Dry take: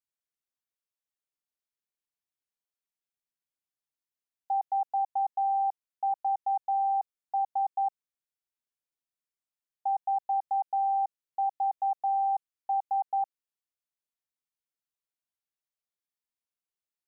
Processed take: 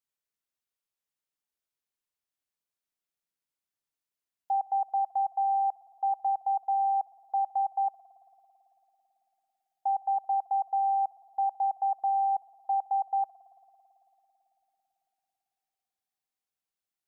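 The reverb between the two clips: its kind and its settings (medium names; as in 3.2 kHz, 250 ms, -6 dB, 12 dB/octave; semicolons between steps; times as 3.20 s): spring tank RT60 3.6 s, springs 55 ms, chirp 40 ms, DRR 17 dB; trim +1 dB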